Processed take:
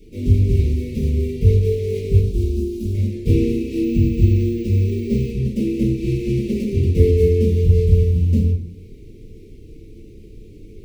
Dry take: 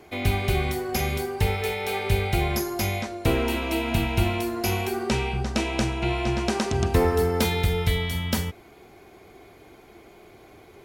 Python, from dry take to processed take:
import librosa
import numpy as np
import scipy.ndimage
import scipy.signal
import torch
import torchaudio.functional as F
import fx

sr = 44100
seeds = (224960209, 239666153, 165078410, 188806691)

p1 = scipy.signal.medfilt(x, 41)
p2 = fx.dmg_noise_colour(p1, sr, seeds[0], colour='brown', level_db=-49.0)
p3 = scipy.signal.sosfilt(scipy.signal.butter(2, 40.0, 'highpass', fs=sr, output='sos'), p2)
p4 = fx.rider(p3, sr, range_db=10, speed_s=0.5)
p5 = p3 + F.gain(torch.from_numpy(p4), -0.5).numpy()
p6 = fx.fixed_phaser(p5, sr, hz=510.0, stages=6, at=(2.19, 2.94))
p7 = fx.room_shoebox(p6, sr, seeds[1], volume_m3=30.0, walls='mixed', distance_m=2.2)
p8 = fx.resample_bad(p7, sr, factor=2, down='filtered', up='hold', at=(3.84, 5.31))
p9 = scipy.signal.sosfilt(scipy.signal.cheby2(4, 40, [700.0, 1600.0], 'bandstop', fs=sr, output='sos'), p8)
p10 = fx.peak_eq(p9, sr, hz=1300.0, db=-5.0, octaves=0.53)
y = F.gain(torch.from_numpy(p10), -12.5).numpy()